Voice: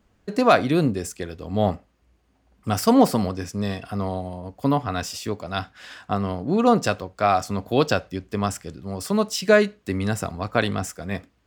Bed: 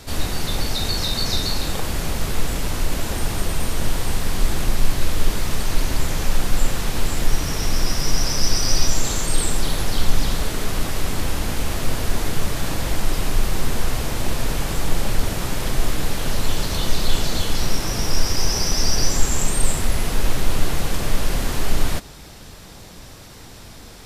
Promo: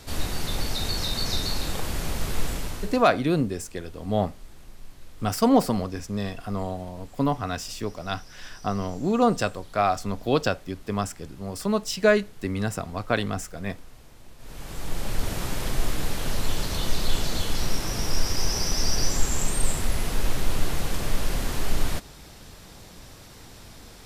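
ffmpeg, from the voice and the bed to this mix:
-filter_complex "[0:a]adelay=2550,volume=0.708[s0];[1:a]volume=6.68,afade=t=out:st=2.47:d=0.6:silence=0.0841395,afade=t=in:st=14.38:d=0.98:silence=0.0841395[s1];[s0][s1]amix=inputs=2:normalize=0"

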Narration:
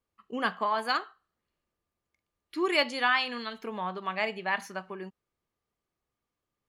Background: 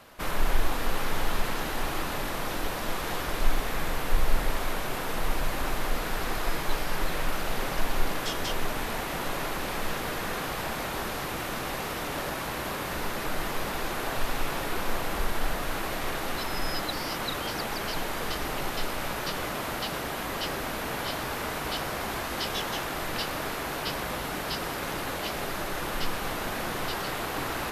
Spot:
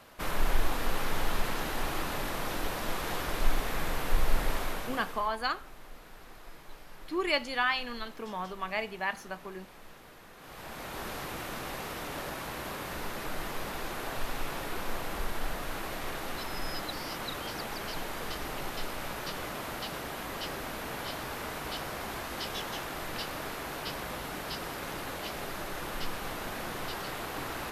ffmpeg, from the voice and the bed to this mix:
-filter_complex "[0:a]adelay=4550,volume=0.708[s0];[1:a]volume=4.22,afade=t=out:st=4.55:d=0.76:silence=0.125893,afade=t=in:st=10.37:d=0.73:silence=0.177828[s1];[s0][s1]amix=inputs=2:normalize=0"

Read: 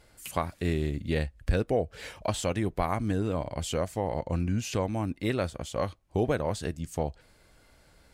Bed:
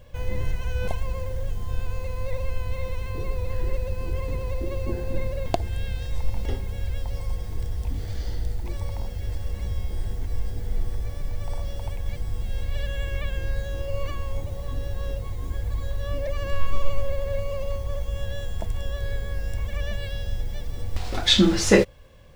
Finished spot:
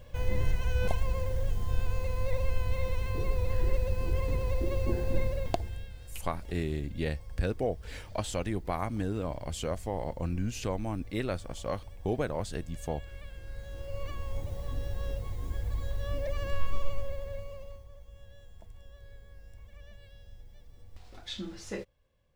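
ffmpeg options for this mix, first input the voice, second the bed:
-filter_complex "[0:a]adelay=5900,volume=0.631[s0];[1:a]volume=3.16,afade=t=out:st=5.19:d=0.72:silence=0.177828,afade=t=in:st=13.44:d=1.08:silence=0.266073,afade=t=out:st=16.41:d=1.48:silence=0.141254[s1];[s0][s1]amix=inputs=2:normalize=0"

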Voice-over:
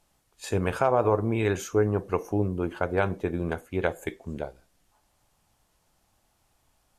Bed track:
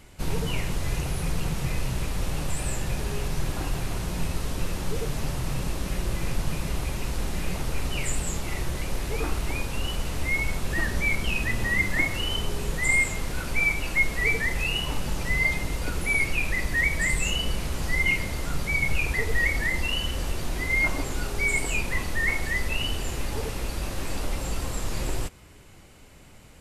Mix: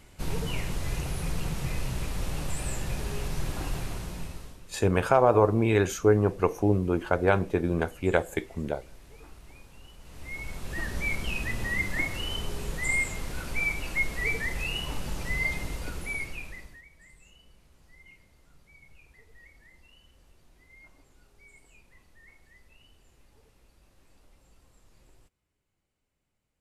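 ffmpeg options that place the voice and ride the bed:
-filter_complex "[0:a]adelay=4300,volume=1.33[s0];[1:a]volume=4.73,afade=t=out:st=3.76:d=0.85:silence=0.11885,afade=t=in:st=10:d=1.06:silence=0.141254,afade=t=out:st=15.64:d=1.18:silence=0.0501187[s1];[s0][s1]amix=inputs=2:normalize=0"

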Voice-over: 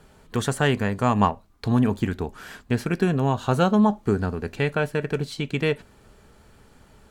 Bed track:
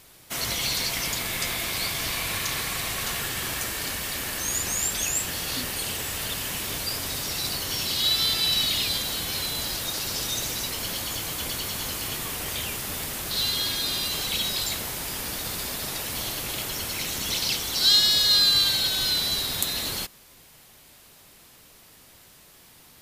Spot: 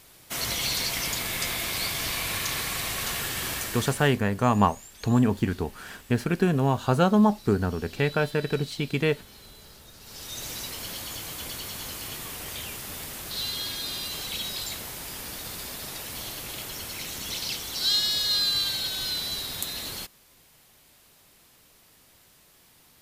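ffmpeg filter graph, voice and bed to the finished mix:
-filter_complex "[0:a]adelay=3400,volume=0.891[s0];[1:a]volume=5.62,afade=t=out:st=3.52:d=0.68:silence=0.0944061,afade=t=in:st=10:d=0.53:silence=0.158489[s1];[s0][s1]amix=inputs=2:normalize=0"

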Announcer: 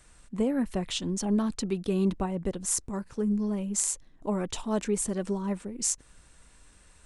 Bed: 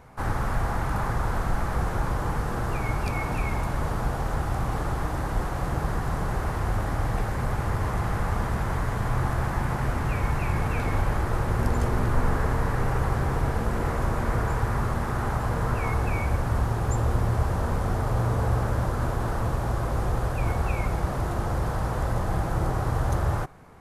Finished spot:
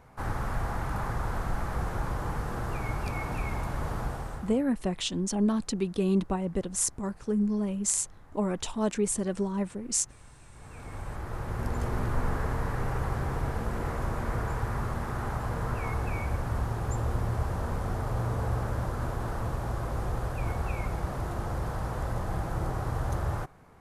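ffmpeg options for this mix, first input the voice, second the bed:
-filter_complex "[0:a]adelay=4100,volume=1.06[s0];[1:a]volume=8.41,afade=t=out:st=4:d=0.64:silence=0.0630957,afade=t=in:st=10.52:d=1.44:silence=0.0668344[s1];[s0][s1]amix=inputs=2:normalize=0"

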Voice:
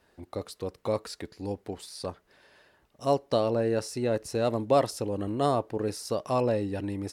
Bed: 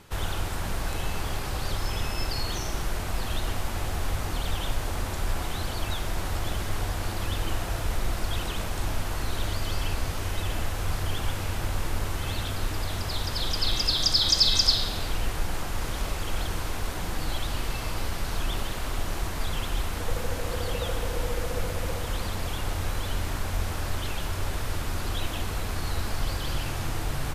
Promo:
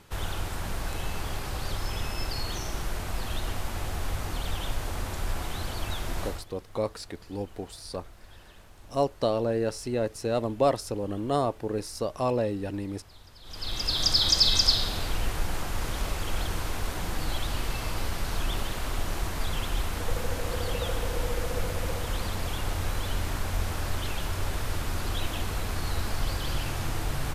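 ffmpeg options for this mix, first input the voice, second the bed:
-filter_complex "[0:a]adelay=5900,volume=0.944[s0];[1:a]volume=8.91,afade=t=out:st=6.25:d=0.2:silence=0.105925,afade=t=in:st=13.43:d=0.65:silence=0.0841395[s1];[s0][s1]amix=inputs=2:normalize=0"

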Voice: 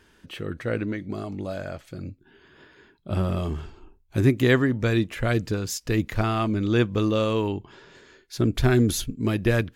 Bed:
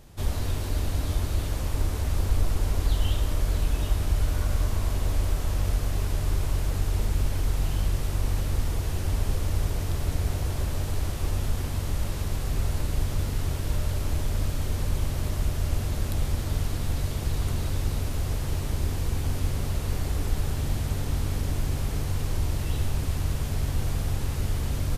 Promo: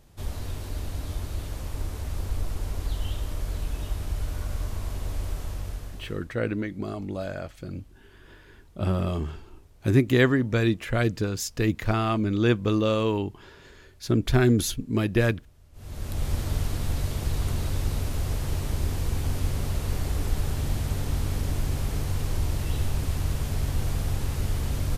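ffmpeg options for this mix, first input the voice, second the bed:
-filter_complex "[0:a]adelay=5700,volume=0.944[s0];[1:a]volume=14.1,afade=t=out:st=5.4:d=0.91:silence=0.0707946,afade=t=in:st=15.73:d=0.61:silence=0.0375837[s1];[s0][s1]amix=inputs=2:normalize=0"

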